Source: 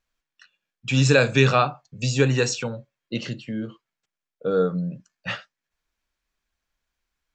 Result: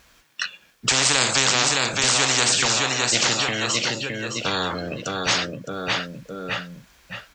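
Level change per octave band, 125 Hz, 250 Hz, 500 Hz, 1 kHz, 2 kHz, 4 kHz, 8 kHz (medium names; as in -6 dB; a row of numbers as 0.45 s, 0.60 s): -8.5 dB, -4.0 dB, -4.5 dB, +3.5 dB, +5.0 dB, +12.0 dB, +14.5 dB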